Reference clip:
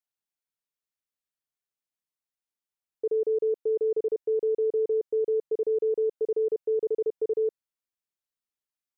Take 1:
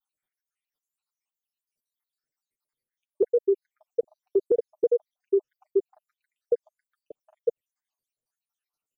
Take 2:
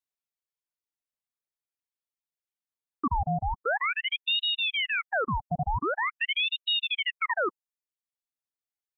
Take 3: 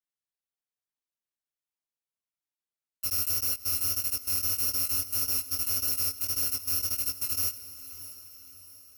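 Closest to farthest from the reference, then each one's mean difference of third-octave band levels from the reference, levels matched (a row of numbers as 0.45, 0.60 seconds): 1, 2, 3; 5.0, 11.5, 23.0 decibels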